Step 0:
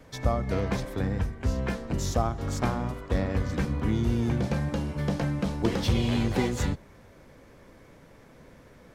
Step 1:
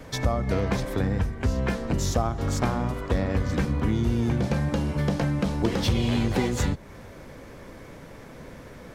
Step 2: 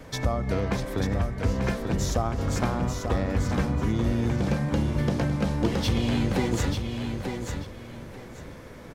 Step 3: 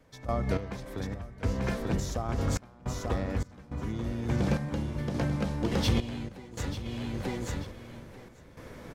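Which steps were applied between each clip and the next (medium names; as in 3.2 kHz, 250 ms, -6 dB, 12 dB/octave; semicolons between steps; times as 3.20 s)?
compression 2:1, threshold -35 dBFS, peak gain reduction 9 dB; trim +9 dB
feedback delay 890 ms, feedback 23%, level -6 dB; trim -1.5 dB
random-step tremolo, depth 95%; trim -1 dB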